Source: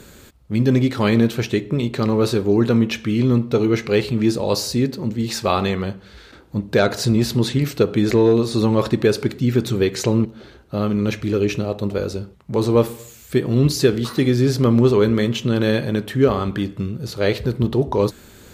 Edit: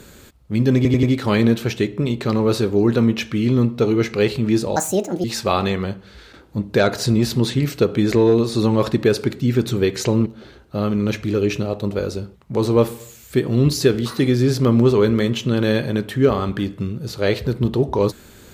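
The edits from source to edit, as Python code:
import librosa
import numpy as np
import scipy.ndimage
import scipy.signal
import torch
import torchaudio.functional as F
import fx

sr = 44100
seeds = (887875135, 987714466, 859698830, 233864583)

y = fx.edit(x, sr, fx.stutter(start_s=0.76, slice_s=0.09, count=4),
    fx.speed_span(start_s=4.49, length_s=0.74, speed=1.54), tone=tone)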